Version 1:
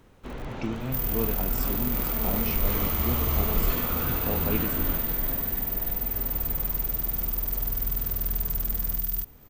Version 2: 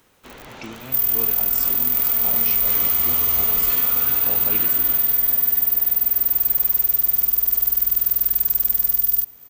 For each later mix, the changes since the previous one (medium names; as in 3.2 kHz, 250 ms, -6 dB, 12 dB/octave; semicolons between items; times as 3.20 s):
master: add tilt EQ +3 dB/octave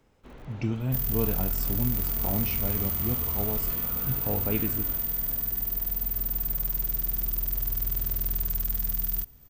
speech: remove high-pass 170 Hz 12 dB/octave; first sound -10.0 dB; master: add tilt EQ -3 dB/octave